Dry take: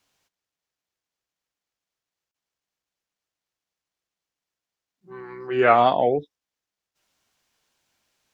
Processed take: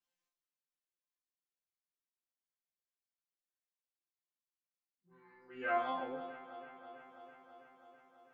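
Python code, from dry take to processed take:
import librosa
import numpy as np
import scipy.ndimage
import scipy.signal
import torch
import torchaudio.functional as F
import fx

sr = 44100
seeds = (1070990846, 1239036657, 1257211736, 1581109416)

y = fx.resonator_bank(x, sr, root=53, chord='fifth', decay_s=0.53)
y = fx.echo_alternate(y, sr, ms=164, hz=1400.0, feedback_pct=85, wet_db=-11.5)
y = y * librosa.db_to_amplitude(-2.0)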